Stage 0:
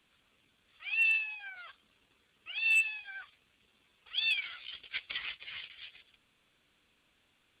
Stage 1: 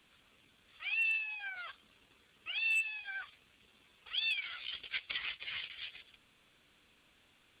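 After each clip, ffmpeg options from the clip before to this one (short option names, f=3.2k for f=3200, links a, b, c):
-af "acompressor=threshold=-42dB:ratio=2,volume=4dB"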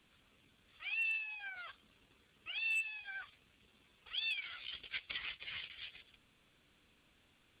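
-af "lowshelf=f=360:g=6,volume=-4dB"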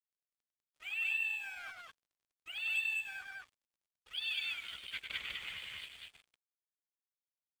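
-filter_complex "[0:a]aeval=exprs='sgn(val(0))*max(abs(val(0))-0.00133,0)':c=same,asplit=2[a][b];[b]aecho=0:1:99.13|198.3:0.501|0.891[c];[a][c]amix=inputs=2:normalize=0"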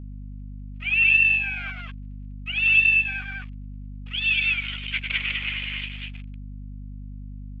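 -af "lowpass=f=2.6k:t=q:w=3.3,aeval=exprs='val(0)+0.00708*(sin(2*PI*50*n/s)+sin(2*PI*2*50*n/s)/2+sin(2*PI*3*50*n/s)/3+sin(2*PI*4*50*n/s)/4+sin(2*PI*5*50*n/s)/5)':c=same,volume=7.5dB"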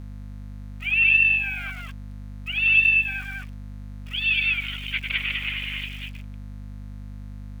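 -af "aeval=exprs='val(0)*gte(abs(val(0)),0.00596)':c=same"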